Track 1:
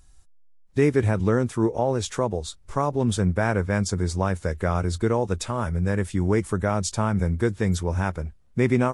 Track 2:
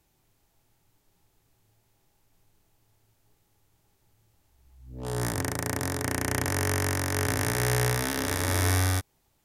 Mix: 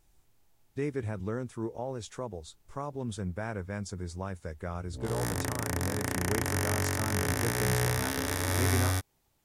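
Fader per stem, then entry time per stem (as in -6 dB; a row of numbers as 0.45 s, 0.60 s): -13.0 dB, -3.0 dB; 0.00 s, 0.00 s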